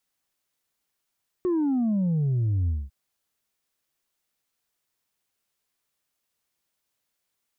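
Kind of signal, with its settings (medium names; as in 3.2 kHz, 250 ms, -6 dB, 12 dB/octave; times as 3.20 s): sub drop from 370 Hz, over 1.45 s, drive 2 dB, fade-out 0.22 s, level -21.5 dB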